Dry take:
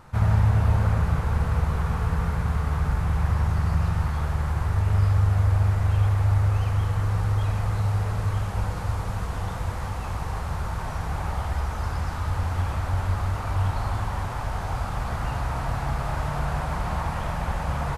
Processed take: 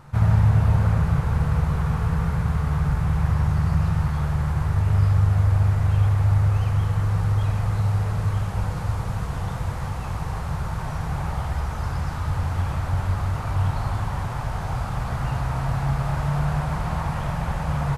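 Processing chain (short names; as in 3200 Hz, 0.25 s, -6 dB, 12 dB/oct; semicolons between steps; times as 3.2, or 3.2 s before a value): bell 140 Hz +9 dB 0.51 oct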